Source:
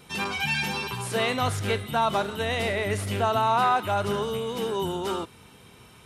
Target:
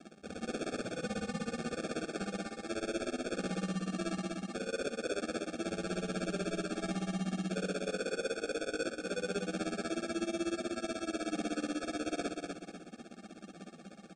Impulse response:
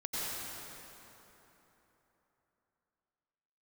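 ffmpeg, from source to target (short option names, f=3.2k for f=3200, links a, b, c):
-af "lowpass=f=1.3k:w=0.5412,lowpass=f=1.3k:w=1.3066,aemphasis=mode=production:type=cd,bandreject=f=960:w=26,areverse,acompressor=threshold=-35dB:ratio=10,areverse,tremolo=f=38:d=0.919,aresample=11025,acrusher=bits=5:mode=log:mix=0:aa=0.000001,aresample=44100,afreqshift=340,acrusher=samples=19:mix=1:aa=0.000001,asoftclip=type=tanh:threshold=-33.5dB,aecho=1:1:105|210|315|420|525:0.596|0.226|0.086|0.0327|0.0124,asetrate=18846,aresample=44100,volume=5dB"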